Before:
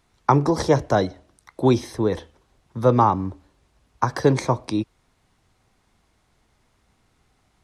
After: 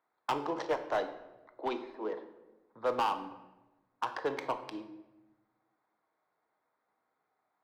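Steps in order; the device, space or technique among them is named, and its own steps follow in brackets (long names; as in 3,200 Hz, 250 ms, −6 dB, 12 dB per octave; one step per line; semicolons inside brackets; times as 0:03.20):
adaptive Wiener filter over 15 samples
0:00.67–0:02.13: Butterworth high-pass 200 Hz 96 dB per octave
megaphone (band-pass filter 590–3,700 Hz; parametric band 3,000 Hz +7 dB 0.23 octaves; hard clipping −17 dBFS, distortion −9 dB)
rectangular room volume 490 cubic metres, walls mixed, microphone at 0.55 metres
level −8 dB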